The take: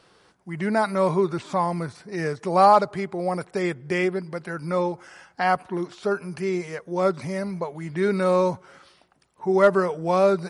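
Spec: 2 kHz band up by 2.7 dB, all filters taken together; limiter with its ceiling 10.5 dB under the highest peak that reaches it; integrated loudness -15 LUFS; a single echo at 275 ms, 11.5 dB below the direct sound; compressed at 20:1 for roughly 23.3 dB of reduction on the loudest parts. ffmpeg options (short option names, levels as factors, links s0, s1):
-af "equalizer=f=2000:t=o:g=3.5,acompressor=threshold=0.0224:ratio=20,alimiter=level_in=2:limit=0.0631:level=0:latency=1,volume=0.501,aecho=1:1:275:0.266,volume=17.8"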